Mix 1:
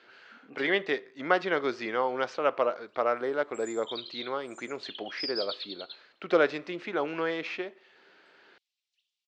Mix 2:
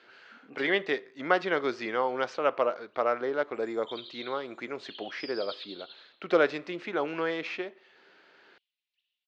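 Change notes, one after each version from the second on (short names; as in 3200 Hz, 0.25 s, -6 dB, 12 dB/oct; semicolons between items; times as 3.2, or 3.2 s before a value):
background: add air absorption 310 m; reverb: on, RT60 0.95 s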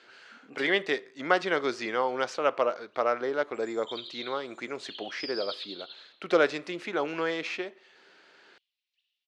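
master: remove air absorption 130 m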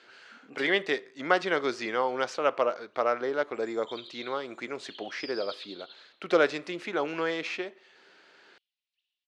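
background -4.5 dB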